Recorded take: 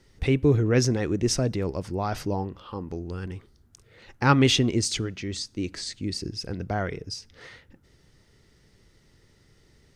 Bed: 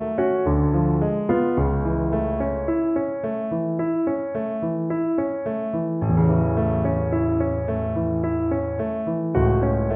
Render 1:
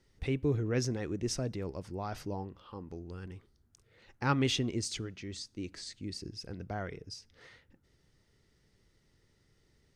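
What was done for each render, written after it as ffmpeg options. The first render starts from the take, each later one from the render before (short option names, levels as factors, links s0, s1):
-af "volume=0.316"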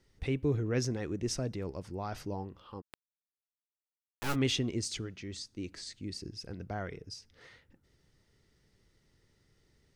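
-filter_complex "[0:a]asplit=3[s0][s1][s2];[s0]afade=t=out:st=2.8:d=0.02[s3];[s1]acrusher=bits=3:dc=4:mix=0:aa=0.000001,afade=t=in:st=2.8:d=0.02,afade=t=out:st=4.34:d=0.02[s4];[s2]afade=t=in:st=4.34:d=0.02[s5];[s3][s4][s5]amix=inputs=3:normalize=0"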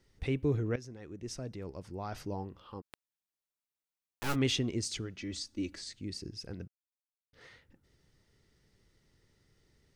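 -filter_complex "[0:a]asettb=1/sr,asplit=3[s0][s1][s2];[s0]atrim=end=5.184[s3];[s1]atrim=start=5.18:end=5.76,asetpts=PTS-STARTPTS,afade=t=in:d=0.004:c=qsin,afade=t=out:st=0.576:d=0.004:c=qsin,aecho=1:1:3.5:0.95,atrim=end_sample=25578[s4];[s2]atrim=start=5.756[s5];[s3][s4]acrossfade=d=0.004:c1=hsin:c2=qsin[s6];[s6][s5]acrossfade=d=0.004:c1=qsin:c2=hsin,asplit=4[s7][s8][s9][s10];[s7]atrim=end=0.76,asetpts=PTS-STARTPTS,afade=t=out:st=0.756:d=0.004:c=hsin:silence=0.133352[s11];[s8]atrim=start=0.76:end=6.68,asetpts=PTS-STARTPTS,afade=t=in:d=1.61:silence=0.133352,afade=t=out:st=5.916:d=0.004:c=hsin[s12];[s9]atrim=start=6.68:end=7.33,asetpts=PTS-STARTPTS,volume=0[s13];[s10]atrim=start=7.33,asetpts=PTS-STARTPTS,afade=t=in:d=0.004:c=hsin[s14];[s11][s12][s13][s14]concat=n=4:v=0:a=1"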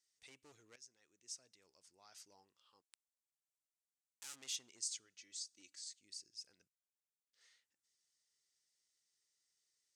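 -af "volume=23.7,asoftclip=hard,volume=0.0422,bandpass=f=7500:t=q:w=1.9:csg=0"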